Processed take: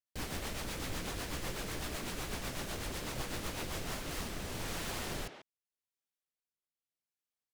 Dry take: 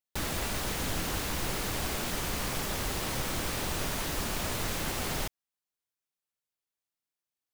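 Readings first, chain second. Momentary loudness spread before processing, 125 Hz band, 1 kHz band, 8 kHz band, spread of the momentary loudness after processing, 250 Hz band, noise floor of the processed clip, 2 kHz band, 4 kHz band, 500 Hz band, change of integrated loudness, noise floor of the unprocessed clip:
0 LU, -6.5 dB, -7.5 dB, -8.0 dB, 2 LU, -6.0 dB, under -85 dBFS, -6.5 dB, -7.0 dB, -6.0 dB, -7.5 dB, under -85 dBFS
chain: rotary cabinet horn 8 Hz, later 0.85 Hz, at 3.50 s; speakerphone echo 140 ms, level -7 dB; loudspeaker Doppler distortion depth 0.89 ms; trim -4.5 dB

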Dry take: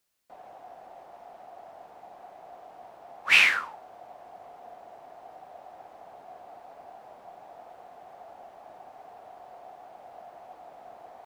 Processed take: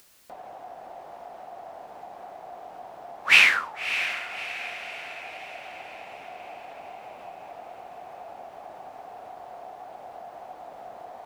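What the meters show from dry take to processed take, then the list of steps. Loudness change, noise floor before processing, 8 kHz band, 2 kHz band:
-1.0 dB, -52 dBFS, +3.5 dB, +3.5 dB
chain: echo that smears into a reverb 607 ms, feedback 51%, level -10.5 dB; in parallel at +1 dB: upward compressor, threshold -37 dBFS; on the sum: trim -3.5 dB

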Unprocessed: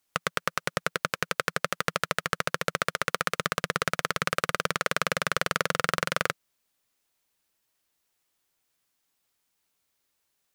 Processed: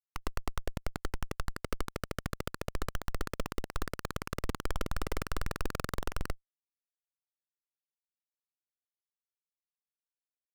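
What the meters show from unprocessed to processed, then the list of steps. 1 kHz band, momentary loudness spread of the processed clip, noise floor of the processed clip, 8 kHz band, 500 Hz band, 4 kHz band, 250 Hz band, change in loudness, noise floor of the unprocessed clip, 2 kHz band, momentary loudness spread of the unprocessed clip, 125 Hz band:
-12.0 dB, 3 LU, under -85 dBFS, -11.5 dB, -9.0 dB, -13.5 dB, -2.5 dB, -10.5 dB, -77 dBFS, -15.5 dB, 3 LU, -1.5 dB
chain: level held to a coarse grid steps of 11 dB; Chebyshev shaper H 2 -9 dB, 3 -15 dB, 5 -23 dB, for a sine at -9 dBFS; Schmitt trigger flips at -27.5 dBFS; trim +10 dB

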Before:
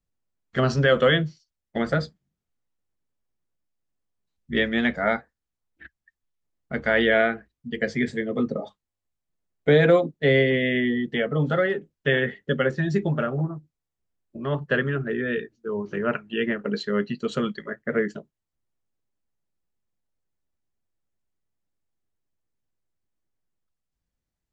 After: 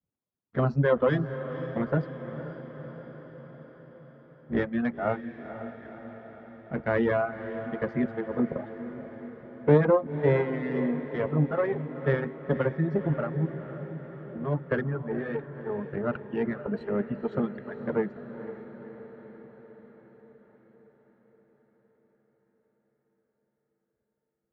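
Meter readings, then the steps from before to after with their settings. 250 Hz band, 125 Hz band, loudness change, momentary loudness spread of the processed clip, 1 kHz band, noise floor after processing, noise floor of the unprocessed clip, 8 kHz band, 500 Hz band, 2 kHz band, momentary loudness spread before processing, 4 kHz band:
-3.0 dB, -1.5 dB, -5.0 dB, 19 LU, -3.5 dB, -80 dBFS, -85 dBFS, no reading, -4.0 dB, -11.0 dB, 12 LU, under -20 dB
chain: partial rectifier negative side -12 dB; high-pass 100 Hz; reverb removal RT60 1.9 s; low-pass 1.4 kHz 12 dB/octave; bass shelf 430 Hz +6 dB; echo that smears into a reverb 500 ms, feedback 63%, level -11 dB; trim -1.5 dB

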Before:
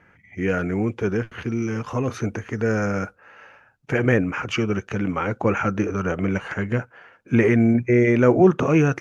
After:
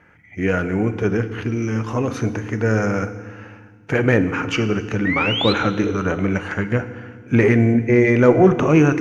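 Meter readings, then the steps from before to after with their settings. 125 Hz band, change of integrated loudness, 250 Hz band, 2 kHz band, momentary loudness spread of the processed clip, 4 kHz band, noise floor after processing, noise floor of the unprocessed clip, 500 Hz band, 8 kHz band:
+3.5 dB, +3.0 dB, +2.5 dB, +4.0 dB, 11 LU, +11.5 dB, -47 dBFS, -58 dBFS, +3.0 dB, no reading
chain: painted sound rise, 5.05–5.53 s, 1.8–4.2 kHz -26 dBFS; Chebyshev shaper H 6 -32 dB, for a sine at -3.5 dBFS; FDN reverb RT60 1.6 s, low-frequency decay 1.55×, high-frequency decay 0.95×, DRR 10 dB; trim +2.5 dB

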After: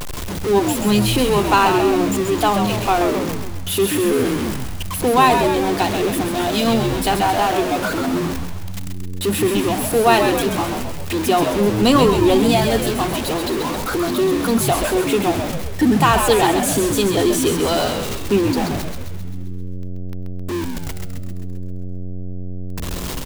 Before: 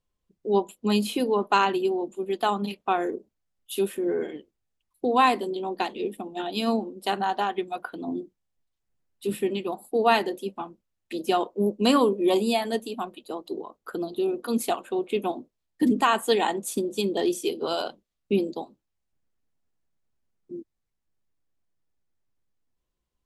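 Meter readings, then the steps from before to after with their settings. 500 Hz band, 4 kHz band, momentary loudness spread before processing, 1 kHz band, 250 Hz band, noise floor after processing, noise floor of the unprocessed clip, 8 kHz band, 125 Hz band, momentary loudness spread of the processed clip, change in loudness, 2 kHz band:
+8.5 dB, +10.0 dB, 15 LU, +8.0 dB, +9.5 dB, -26 dBFS, -80 dBFS, +16.0 dB, +18.0 dB, 17 LU, +8.5 dB, +9.5 dB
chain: jump at every zero crossing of -24.5 dBFS; frequency-shifting echo 132 ms, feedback 59%, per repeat -91 Hz, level -6 dB; trim +4.5 dB

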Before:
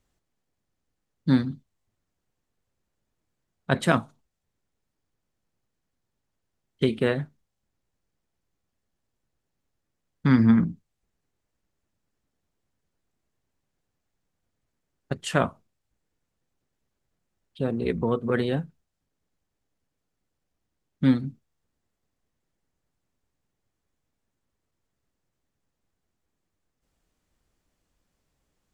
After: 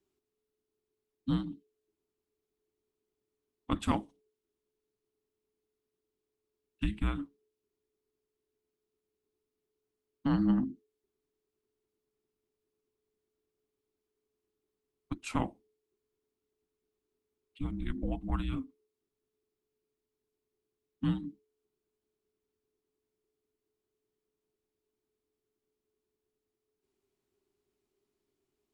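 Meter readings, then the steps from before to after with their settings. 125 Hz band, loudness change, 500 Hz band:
-9.5 dB, -9.5 dB, -17.5 dB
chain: frequency shift -430 Hz; fifteen-band graphic EQ 160 Hz -5 dB, 1.6 kHz -4 dB, 6.3 kHz -4 dB; trim -7 dB

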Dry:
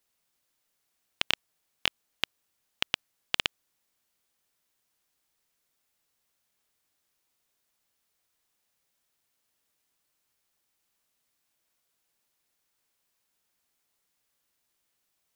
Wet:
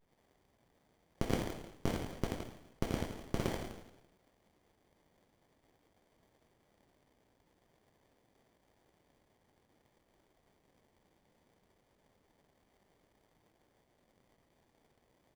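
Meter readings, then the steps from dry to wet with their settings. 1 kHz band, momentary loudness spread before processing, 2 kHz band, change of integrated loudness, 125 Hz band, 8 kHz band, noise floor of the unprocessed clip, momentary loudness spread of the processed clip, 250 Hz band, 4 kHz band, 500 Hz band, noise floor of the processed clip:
-2.0 dB, 5 LU, -13.5 dB, -7.5 dB, +14.0 dB, -5.0 dB, -78 dBFS, 9 LU, +12.5 dB, -18.5 dB, +8.0 dB, -74 dBFS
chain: self-modulated delay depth 0.076 ms; treble shelf 11 kHz -4 dB; peak limiter -14.5 dBFS, peak gain reduction 9.5 dB; saturation -20.5 dBFS, distortion -12 dB; steep high-pass 1.2 kHz 48 dB/octave; frequency-shifting echo 84 ms, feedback 52%, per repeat +32 Hz, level -5 dB; plate-style reverb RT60 0.72 s, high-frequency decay 0.95×, DRR -7 dB; sliding maximum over 33 samples; trim +5 dB

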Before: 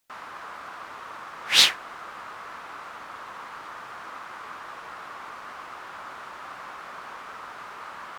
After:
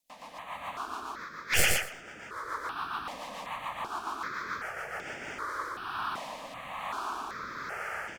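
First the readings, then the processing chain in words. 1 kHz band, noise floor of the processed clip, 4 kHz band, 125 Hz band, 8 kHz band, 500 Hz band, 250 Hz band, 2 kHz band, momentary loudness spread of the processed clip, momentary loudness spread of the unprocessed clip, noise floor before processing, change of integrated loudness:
+1.0 dB, -47 dBFS, -12.5 dB, +9.5 dB, -2.5 dB, +3.0 dB, +3.5 dB, -1.0 dB, 12 LU, 19 LU, -42 dBFS, -5.0 dB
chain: tracing distortion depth 0.073 ms; level rider gain up to 7.5 dB; rotary cabinet horn 7 Hz, later 1.1 Hz, at 4.94 s; on a send: feedback delay 118 ms, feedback 16%, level -3 dB; on the sum: stepped phaser 2.6 Hz 380–4000 Hz

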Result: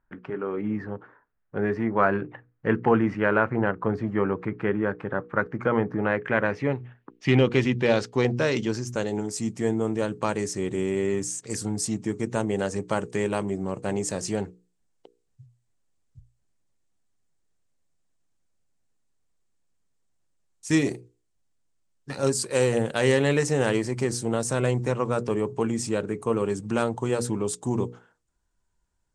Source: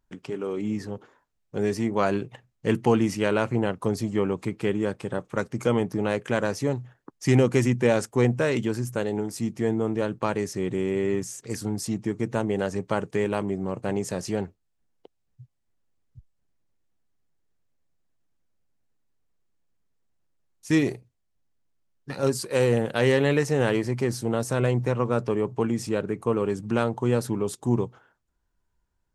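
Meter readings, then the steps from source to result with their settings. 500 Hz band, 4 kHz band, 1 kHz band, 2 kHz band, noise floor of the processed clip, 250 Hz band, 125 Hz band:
-0.5 dB, +1.0 dB, +2.0 dB, +3.0 dB, -73 dBFS, -0.5 dB, -1.5 dB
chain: hard clipper -9.5 dBFS, distortion -36 dB; hum notches 60/120/180/240/300/360/420/480 Hz; low-pass sweep 1.6 kHz -> 8.3 kHz, 5.92–9.53 s

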